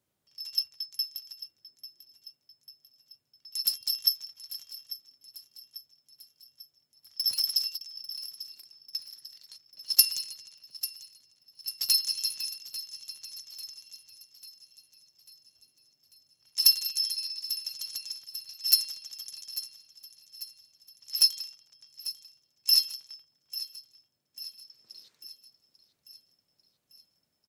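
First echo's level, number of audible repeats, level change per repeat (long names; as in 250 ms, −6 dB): −14.5 dB, 4, −5.5 dB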